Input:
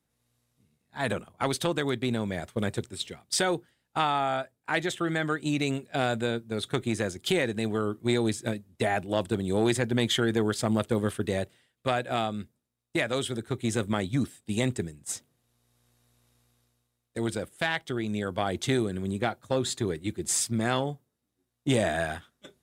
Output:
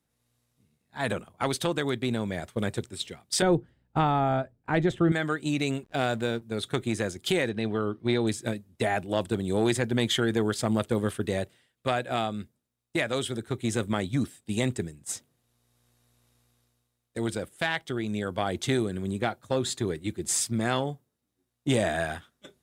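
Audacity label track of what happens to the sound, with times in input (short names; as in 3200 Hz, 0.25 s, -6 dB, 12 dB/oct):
3.420000	5.120000	tilt -4 dB/oct
5.830000	6.420000	backlash play -44.5 dBFS
7.490000	8.270000	polynomial smoothing over 15 samples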